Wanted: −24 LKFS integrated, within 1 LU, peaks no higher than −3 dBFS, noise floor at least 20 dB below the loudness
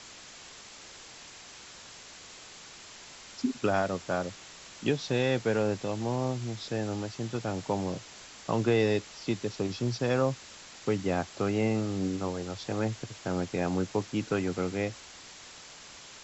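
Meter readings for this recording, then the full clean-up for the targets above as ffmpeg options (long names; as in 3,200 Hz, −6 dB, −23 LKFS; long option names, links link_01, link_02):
background noise floor −49 dBFS; target noise floor −51 dBFS; integrated loudness −31.0 LKFS; sample peak −13.5 dBFS; target loudness −24.0 LKFS
→ -af "afftdn=noise_reduction=6:noise_floor=-49"
-af "volume=7dB"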